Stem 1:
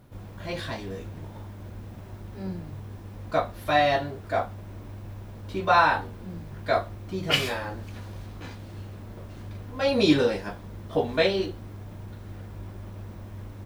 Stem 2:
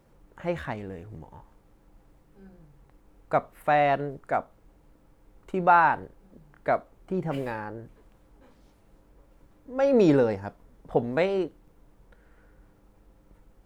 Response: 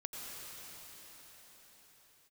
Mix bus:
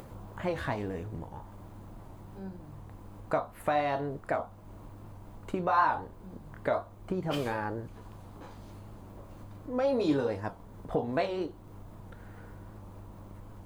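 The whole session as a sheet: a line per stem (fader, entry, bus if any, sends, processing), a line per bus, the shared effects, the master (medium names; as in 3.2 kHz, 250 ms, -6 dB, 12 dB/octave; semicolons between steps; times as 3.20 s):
-5.5 dB, 0.00 s, no send, graphic EQ 1/2/4 kHz +10/-10/-3 dB; auto duck -7 dB, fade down 1.70 s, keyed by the second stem
+3.0 dB, 0.00 s, no send, compression, threshold -31 dBFS, peak gain reduction 16 dB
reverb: none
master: band-stop 5.5 kHz, Q 14; upward compressor, threshold -40 dBFS; warped record 78 rpm, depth 100 cents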